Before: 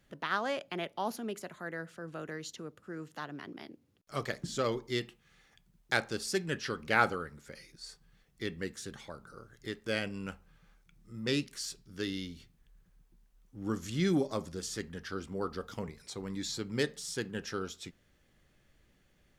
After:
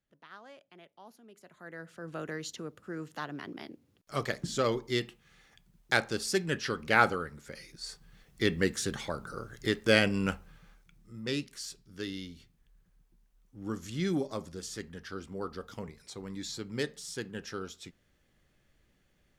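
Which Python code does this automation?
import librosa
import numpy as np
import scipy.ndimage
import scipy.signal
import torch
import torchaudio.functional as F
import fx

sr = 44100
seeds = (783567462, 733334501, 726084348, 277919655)

y = fx.gain(x, sr, db=fx.line((1.28, -18.0), (1.58, -8.0), (2.16, 3.0), (7.46, 3.0), (8.55, 10.0), (10.32, 10.0), (11.23, -2.0)))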